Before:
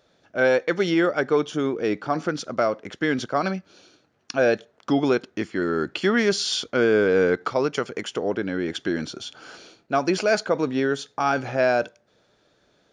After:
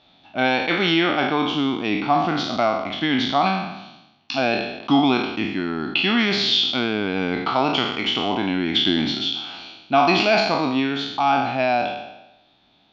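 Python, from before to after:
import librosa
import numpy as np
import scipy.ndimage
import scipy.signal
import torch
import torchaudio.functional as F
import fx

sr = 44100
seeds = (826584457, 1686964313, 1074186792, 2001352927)

y = fx.spec_trails(x, sr, decay_s=0.95)
y = fx.curve_eq(y, sr, hz=(150.0, 270.0, 500.0, 770.0, 1600.0, 2600.0, 3800.0, 8600.0), db=(0, 4, -13, 8, -6, 8, 8, -25))
y = fx.rider(y, sr, range_db=5, speed_s=2.0)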